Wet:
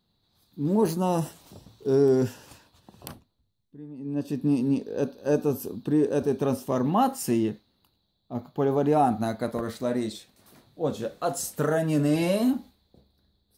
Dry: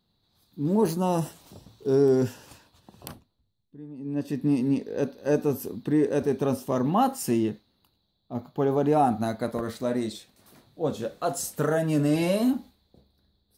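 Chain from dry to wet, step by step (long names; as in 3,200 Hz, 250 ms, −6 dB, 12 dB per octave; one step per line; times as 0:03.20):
0:04.06–0:06.40: parametric band 2,000 Hz −12.5 dB 0.25 octaves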